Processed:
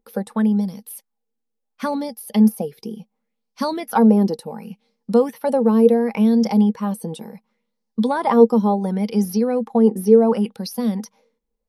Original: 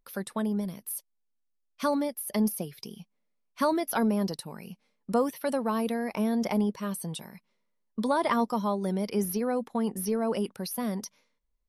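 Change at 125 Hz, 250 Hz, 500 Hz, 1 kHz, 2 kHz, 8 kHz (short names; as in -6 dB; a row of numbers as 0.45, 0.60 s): +10.5 dB, +11.5 dB, +12.0 dB, +7.0 dB, +3.0 dB, n/a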